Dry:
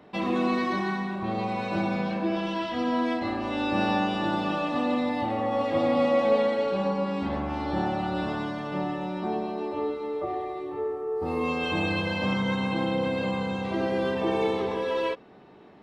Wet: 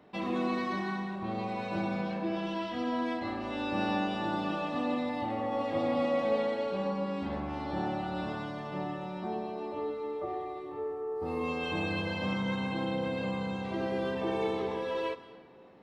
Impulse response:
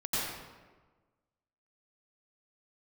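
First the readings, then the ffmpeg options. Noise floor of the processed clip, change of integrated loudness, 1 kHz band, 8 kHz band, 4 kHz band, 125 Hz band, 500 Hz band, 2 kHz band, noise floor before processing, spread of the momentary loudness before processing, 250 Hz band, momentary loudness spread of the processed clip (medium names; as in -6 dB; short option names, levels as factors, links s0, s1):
-47 dBFS, -6.0 dB, -5.5 dB, no reading, -6.0 dB, -5.0 dB, -6.0 dB, -6.0 dB, -45 dBFS, 6 LU, -5.5 dB, 6 LU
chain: -filter_complex "[0:a]asplit=2[s0][s1];[1:a]atrim=start_sample=2205,adelay=73[s2];[s1][s2]afir=irnorm=-1:irlink=0,volume=0.0841[s3];[s0][s3]amix=inputs=2:normalize=0,volume=0.501"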